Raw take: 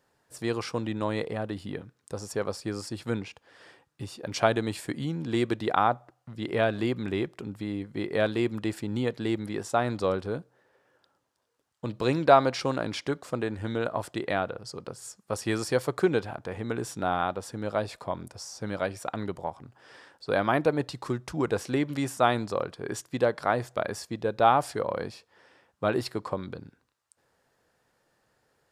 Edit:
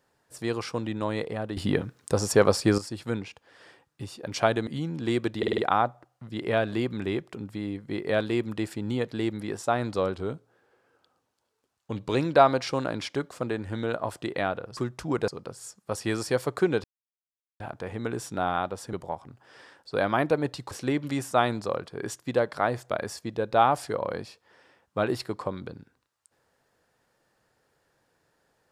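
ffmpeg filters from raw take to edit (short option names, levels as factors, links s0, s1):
-filter_complex "[0:a]asplit=15[s0][s1][s2][s3][s4][s5][s6][s7][s8][s9][s10][s11][s12][s13][s14];[s0]atrim=end=1.572[s15];[s1]atrim=start=1.568:end=2.782,asetpts=PTS-STARTPTS,volume=3.55[s16];[s2]atrim=start=2.778:end=4.672[s17];[s3]atrim=start=4.928:end=5.692[s18];[s4]atrim=start=5.638:end=5.692[s19];[s5]atrim=start=5.638:end=5.692[s20];[s6]atrim=start=5.638:end=5.692[s21];[s7]atrim=start=5.638:end=10.214[s22];[s8]atrim=start=10.21:end=12.07,asetpts=PTS-STARTPTS,asetrate=41013,aresample=44100[s23];[s9]atrim=start=12.066:end=14.692[s24];[s10]atrim=start=21.058:end=21.572[s25];[s11]atrim=start=14.688:end=16.25,asetpts=PTS-STARTPTS,afade=t=out:st=1.558:d=0.004:c=hsin,apad=pad_dur=0.76[s26];[s12]atrim=start=16.25:end=17.582,asetpts=PTS-STARTPTS,afade=t=in:d=0.004:c=hsin[s27];[s13]atrim=start=19.278:end=21.062[s28];[s14]atrim=start=21.568[s29];[s15][s16]acrossfade=d=0.004:c1=hsin:c2=hsin[s30];[s30][s17]acrossfade=d=0.004:c1=hsin:c2=hsin[s31];[s31][s18]acrossfade=d=0.004:c1=hsin:c2=hsin[s32];[s32][s19]acrossfade=d=0.004:c1=hsin:c2=hsin[s33];[s33][s20]acrossfade=d=0.004:c1=hsin:c2=hsin[s34];[s34][s21]acrossfade=d=0.004:c1=hsin:c2=hsin[s35];[s35][s22]acrossfade=d=0.004:c1=hsin:c2=hsin[s36];[s36][s23]acrossfade=d=0.004:c1=hsin:c2=hsin[s37];[s37][s24]acrossfade=d=0.004:c1=hsin:c2=hsin[s38];[s38][s25]acrossfade=d=0.004:c1=hsin:c2=hsin[s39];[s26][s27]concat=n=2:v=0:a=1[s40];[s39][s40]acrossfade=d=0.004:c1=hsin:c2=hsin[s41];[s41][s28]acrossfade=d=0.004:c1=hsin:c2=hsin[s42];[s42][s29]acrossfade=d=0.004:c1=hsin:c2=hsin"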